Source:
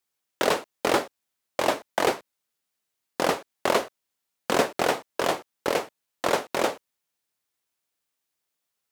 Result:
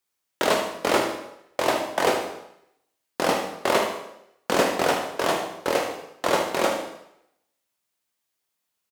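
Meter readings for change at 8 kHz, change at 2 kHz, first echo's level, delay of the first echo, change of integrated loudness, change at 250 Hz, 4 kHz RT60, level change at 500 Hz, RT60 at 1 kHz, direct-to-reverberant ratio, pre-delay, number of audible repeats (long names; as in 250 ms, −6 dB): +2.5 dB, +2.0 dB, −9.0 dB, 76 ms, +2.0 dB, +2.5 dB, 0.75 s, +2.0 dB, 0.80 s, 1.5 dB, 7 ms, 1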